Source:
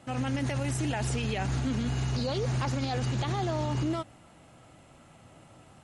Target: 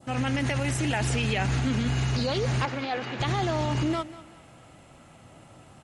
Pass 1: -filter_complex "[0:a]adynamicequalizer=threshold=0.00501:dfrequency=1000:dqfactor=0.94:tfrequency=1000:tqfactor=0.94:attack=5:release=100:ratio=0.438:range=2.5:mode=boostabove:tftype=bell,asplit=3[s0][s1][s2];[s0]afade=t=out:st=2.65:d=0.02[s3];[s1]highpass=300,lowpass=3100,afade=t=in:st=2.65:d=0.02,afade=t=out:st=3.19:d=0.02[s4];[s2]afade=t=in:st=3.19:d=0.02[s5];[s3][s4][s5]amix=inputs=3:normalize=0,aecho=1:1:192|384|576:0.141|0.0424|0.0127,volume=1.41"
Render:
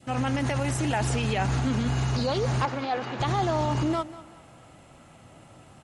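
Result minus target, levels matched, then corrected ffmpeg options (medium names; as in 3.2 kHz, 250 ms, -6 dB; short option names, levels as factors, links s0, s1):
1 kHz band +3.0 dB
-filter_complex "[0:a]adynamicequalizer=threshold=0.00501:dfrequency=2200:dqfactor=0.94:tfrequency=2200:tqfactor=0.94:attack=5:release=100:ratio=0.438:range=2.5:mode=boostabove:tftype=bell,asplit=3[s0][s1][s2];[s0]afade=t=out:st=2.65:d=0.02[s3];[s1]highpass=300,lowpass=3100,afade=t=in:st=2.65:d=0.02,afade=t=out:st=3.19:d=0.02[s4];[s2]afade=t=in:st=3.19:d=0.02[s5];[s3][s4][s5]amix=inputs=3:normalize=0,aecho=1:1:192|384|576:0.141|0.0424|0.0127,volume=1.41"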